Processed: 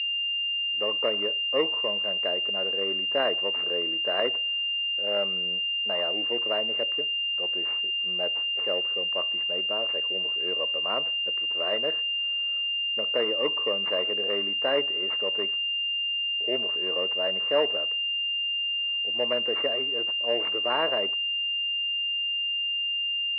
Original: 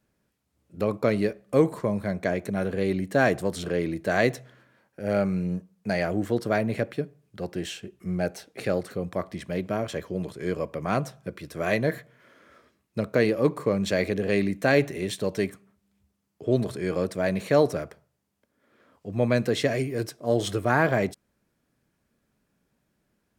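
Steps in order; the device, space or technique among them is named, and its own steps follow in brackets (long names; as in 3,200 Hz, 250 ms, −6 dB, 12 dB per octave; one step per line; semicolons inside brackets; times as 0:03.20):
low-shelf EQ 400 Hz −5 dB
toy sound module (linearly interpolated sample-rate reduction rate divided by 8×; switching amplifier with a slow clock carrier 2,800 Hz; loudspeaker in its box 620–4,200 Hz, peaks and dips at 760 Hz −8 dB, 1,500 Hz −6 dB, 2,100 Hz +4 dB)
level +4.5 dB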